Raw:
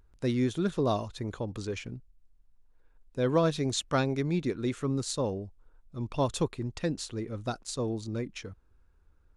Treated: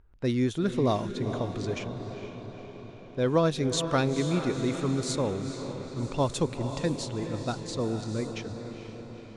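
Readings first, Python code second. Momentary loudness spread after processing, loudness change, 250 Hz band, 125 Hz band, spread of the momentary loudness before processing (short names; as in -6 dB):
15 LU, +2.0 dB, +2.5 dB, +2.5 dB, 12 LU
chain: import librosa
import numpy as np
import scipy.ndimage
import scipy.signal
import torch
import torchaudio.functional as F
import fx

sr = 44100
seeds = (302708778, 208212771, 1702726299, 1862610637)

y = fx.echo_diffused(x, sr, ms=466, feedback_pct=63, wet_db=-8.5)
y = fx.env_lowpass(y, sr, base_hz=2800.0, full_db=-25.0)
y = y * librosa.db_to_amplitude(1.5)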